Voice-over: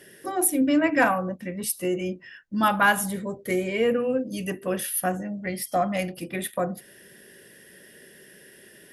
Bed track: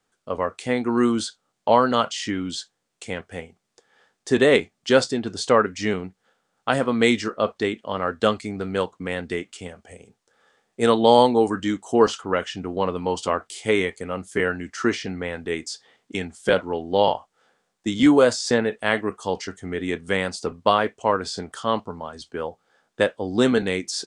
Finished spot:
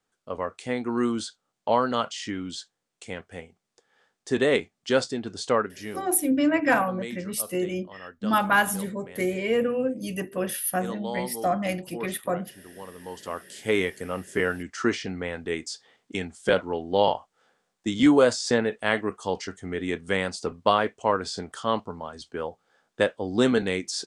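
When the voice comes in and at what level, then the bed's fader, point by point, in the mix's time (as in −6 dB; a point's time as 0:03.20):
5.70 s, −1.0 dB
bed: 0:05.54 −5.5 dB
0:06.17 −18.5 dB
0:12.86 −18.5 dB
0:13.78 −2.5 dB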